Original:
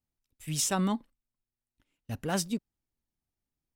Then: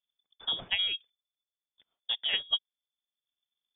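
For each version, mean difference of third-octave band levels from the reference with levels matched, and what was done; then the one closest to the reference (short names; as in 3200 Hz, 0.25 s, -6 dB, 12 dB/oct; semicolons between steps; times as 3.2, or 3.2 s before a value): 16.0 dB: transient shaper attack +10 dB, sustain -4 dB; inverted band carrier 3500 Hz; gain -4 dB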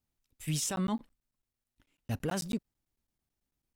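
4.0 dB: limiter -27 dBFS, peak gain reduction 10.5 dB; crackling interface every 0.11 s, samples 512, zero, from 0.76; gain +3 dB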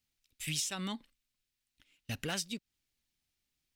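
5.5 dB: EQ curve 1000 Hz 0 dB, 2400 Hz +13 dB, 3900 Hz +14 dB, 11000 Hz +7 dB; compressor 6:1, threshold -33 dBFS, peak gain reduction 16.5 dB; gain -1 dB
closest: second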